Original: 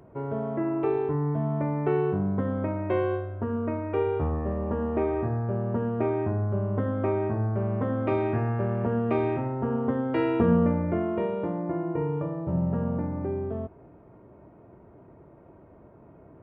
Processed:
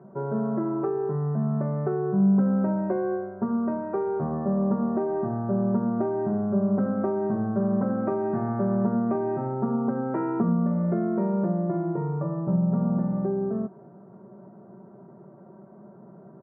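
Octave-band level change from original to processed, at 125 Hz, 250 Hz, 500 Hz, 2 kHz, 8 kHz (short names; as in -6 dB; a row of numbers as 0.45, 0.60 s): 0.0 dB, +4.0 dB, -0.5 dB, -5.0 dB, n/a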